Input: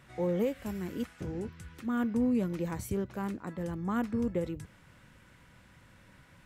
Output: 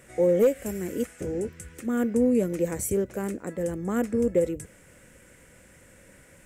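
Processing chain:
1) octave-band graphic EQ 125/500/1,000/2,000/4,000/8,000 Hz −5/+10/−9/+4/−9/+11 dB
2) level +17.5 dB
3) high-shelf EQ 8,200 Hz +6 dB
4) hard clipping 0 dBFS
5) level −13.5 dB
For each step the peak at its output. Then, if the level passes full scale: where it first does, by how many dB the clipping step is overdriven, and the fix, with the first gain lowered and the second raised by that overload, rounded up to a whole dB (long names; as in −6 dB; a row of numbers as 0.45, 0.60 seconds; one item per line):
−14.5, +3.0, +3.0, 0.0, −13.5 dBFS
step 2, 3.0 dB
step 2 +14.5 dB, step 5 −10.5 dB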